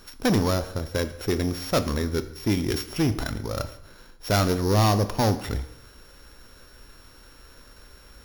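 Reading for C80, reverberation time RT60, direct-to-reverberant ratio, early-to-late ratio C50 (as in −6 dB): 16.0 dB, 0.85 s, 10.5 dB, 14.0 dB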